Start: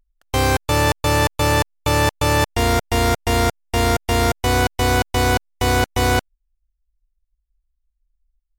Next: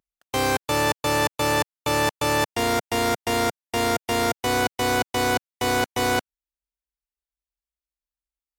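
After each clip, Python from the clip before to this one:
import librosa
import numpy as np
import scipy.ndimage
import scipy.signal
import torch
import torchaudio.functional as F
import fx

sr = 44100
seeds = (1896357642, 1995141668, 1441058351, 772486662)

y = scipy.signal.sosfilt(scipy.signal.butter(2, 160.0, 'highpass', fs=sr, output='sos'), x)
y = F.gain(torch.from_numpy(y), -3.5).numpy()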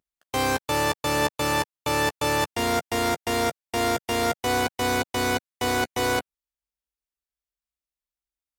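y = fx.chorus_voices(x, sr, voices=2, hz=0.39, base_ms=13, depth_ms=1.7, mix_pct=20)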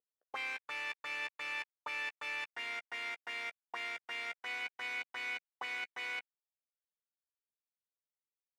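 y = fx.auto_wah(x, sr, base_hz=480.0, top_hz=2300.0, q=4.5, full_db=-23.0, direction='up')
y = F.gain(torch.from_numpy(y), -3.5).numpy()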